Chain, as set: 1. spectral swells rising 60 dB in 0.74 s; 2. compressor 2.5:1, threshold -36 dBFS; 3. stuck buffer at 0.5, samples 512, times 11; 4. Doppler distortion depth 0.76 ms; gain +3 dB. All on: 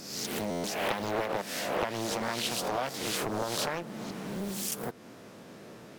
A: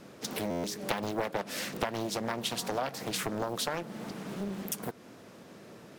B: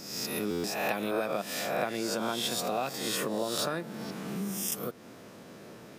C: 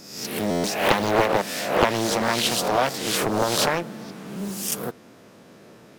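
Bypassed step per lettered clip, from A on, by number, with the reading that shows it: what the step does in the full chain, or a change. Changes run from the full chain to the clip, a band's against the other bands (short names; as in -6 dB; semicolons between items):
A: 1, 250 Hz band +2.0 dB; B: 4, 250 Hz band +1.5 dB; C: 2, mean gain reduction 6.5 dB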